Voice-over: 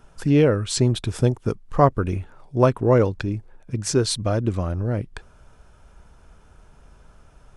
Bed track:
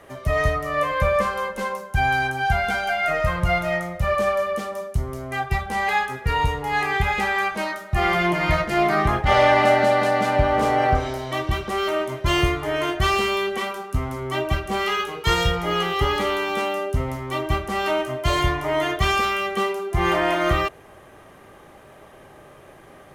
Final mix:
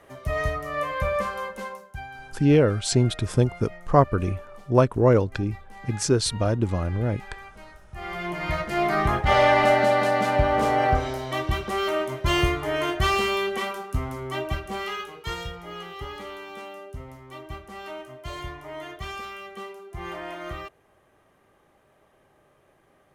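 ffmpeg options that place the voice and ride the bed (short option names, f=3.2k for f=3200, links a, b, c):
-filter_complex "[0:a]adelay=2150,volume=-1dB[a];[1:a]volume=13.5dB,afade=t=out:st=1.47:d=0.61:silence=0.16788,afade=t=in:st=7.89:d=1.24:silence=0.112202,afade=t=out:st=13.71:d=1.81:silence=0.223872[b];[a][b]amix=inputs=2:normalize=0"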